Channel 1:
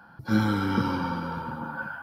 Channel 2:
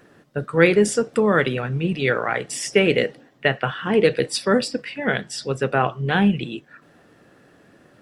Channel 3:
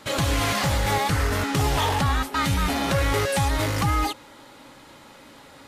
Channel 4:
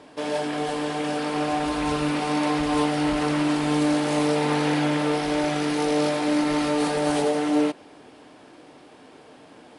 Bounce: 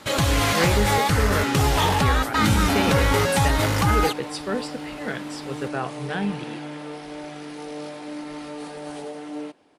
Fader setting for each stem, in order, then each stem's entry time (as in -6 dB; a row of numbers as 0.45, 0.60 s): -0.5, -9.0, +2.5, -12.0 dB; 2.10, 0.00, 0.00, 1.80 s